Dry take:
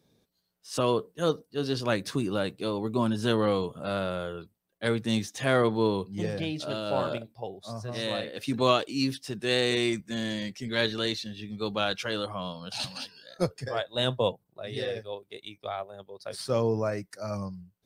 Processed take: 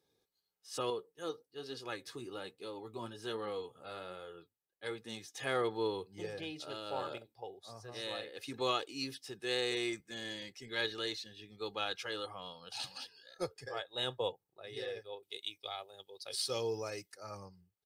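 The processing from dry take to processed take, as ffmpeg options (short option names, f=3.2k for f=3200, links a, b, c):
-filter_complex "[0:a]asettb=1/sr,asplit=3[a][b][c];[a]atrim=end=0.904[d];[b]atrim=start=0.9:end=5.35,asetpts=PTS-STARTPTS,afade=t=in:d=0.004:c=qsin,afade=t=out:st=4.446:d=0.004:c=qsin,flanger=delay=3.8:depth=5.7:regen=56:speed=1.2:shape=triangular[e];[c]atrim=start=5.346[f];[d][e]acrossfade=d=0.004:c1=hsin:c2=qsin[g];[g][f]acrossfade=d=0.004:c1=qsin:c2=hsin,asettb=1/sr,asplit=3[h][i][j];[h]atrim=end=15.234[k];[i]atrim=start=15.23:end=17.12,asetpts=PTS-STARTPTS,afade=t=in:d=0.004:c=qsin,afade=t=out:st=1.886:d=0.004:c=qsin,highshelf=f=2.3k:t=q:w=1.5:g=9[l];[j]atrim=start=17.116[m];[k][l]acrossfade=d=0.004:c1=hsin:c2=qsin[n];[n][m]acrossfade=d=0.004:c1=qsin:c2=hsin,lowshelf=f=270:g=-10,aecho=1:1:2.4:0.52,volume=-8.5dB"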